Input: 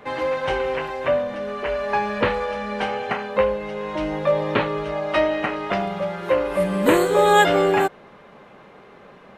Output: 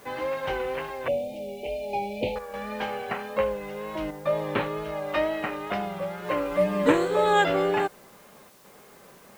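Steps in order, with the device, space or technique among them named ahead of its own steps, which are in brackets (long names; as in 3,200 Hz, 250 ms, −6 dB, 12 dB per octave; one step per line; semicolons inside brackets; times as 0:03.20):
worn cassette (low-pass filter 6,500 Hz; tape wow and flutter; tape dropouts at 0:02.39/0:04.11/0:08.50, 144 ms −7 dB; white noise bed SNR 29 dB)
0:01.08–0:02.36: Chebyshev band-stop filter 820–2,300 Hz, order 4
0:06.24–0:06.92: comb filter 6.7 ms, depth 84%
level −6 dB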